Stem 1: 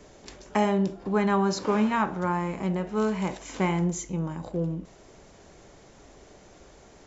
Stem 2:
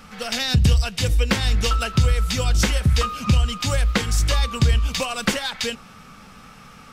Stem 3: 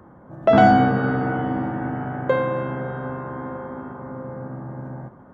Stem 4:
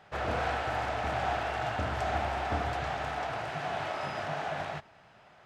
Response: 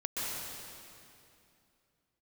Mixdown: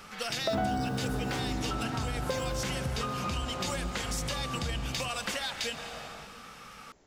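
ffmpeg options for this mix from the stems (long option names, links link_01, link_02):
-filter_complex "[0:a]volume=-11.5dB[link_01];[1:a]lowshelf=frequency=330:gain=-10.5,alimiter=limit=-17dB:level=0:latency=1,volume=-3dB,asplit=2[link_02][link_03];[link_03]volume=-15dB[link_04];[2:a]equalizer=frequency=78:width=0.47:gain=4.5,acrusher=bits=5:mix=0:aa=0.5,volume=-5.5dB[link_05];[3:a]adelay=1450,volume=-11.5dB[link_06];[4:a]atrim=start_sample=2205[link_07];[link_04][link_07]afir=irnorm=-1:irlink=0[link_08];[link_01][link_02][link_05][link_06][link_08]amix=inputs=5:normalize=0,acompressor=threshold=-31dB:ratio=3"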